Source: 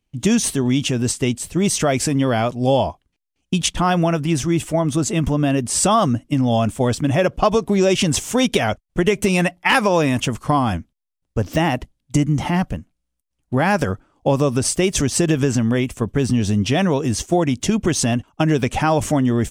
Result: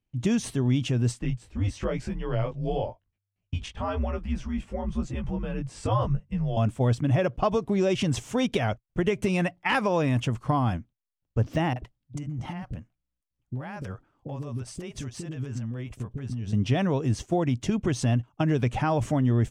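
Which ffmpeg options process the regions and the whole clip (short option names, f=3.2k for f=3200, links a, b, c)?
-filter_complex "[0:a]asettb=1/sr,asplit=3[a][b][c];[a]atrim=end=1.194[d];[b]atrim=start=1.19:end=6.57,asetpts=PTS-STARTPTS,afade=t=in:d=0.004:c=qsin,afade=t=out:st=5.376:d=0.004:c=qsin,aemphasis=mode=reproduction:type=50kf,flanger=delay=16.5:depth=4.5:speed=1,afreqshift=-99[e];[c]atrim=start=6.566[f];[d][e]acrossfade=d=0.004:c1=hsin:c2=qsin[g];[g][f]acrossfade=d=0.004:c1=qsin:c2=hsin,asettb=1/sr,asplit=3[h][i][j];[h]atrim=end=11.734[k];[i]atrim=start=11.73:end=16.53,asetpts=PTS-STARTPTS,afade=t=in:d=0.004:c=qsin,afade=t=out:st=4.796:d=0.004:c=qsin,acompressor=threshold=-23dB:ratio=12:attack=3.2:release=140:knee=1:detection=peak,acrossover=split=480[l][m];[m]adelay=30[n];[l][n]amix=inputs=2:normalize=0,atrim=end_sample=211680[o];[j]atrim=start=16.526[p];[k][o]acrossfade=d=0.004:c1=hsin:c2=qsin[q];[q][p]acrossfade=d=0.004:c1=qsin:c2=hsin,lowpass=f=3k:p=1,equalizer=f=120:t=o:w=0.41:g=8.5,volume=-8dB"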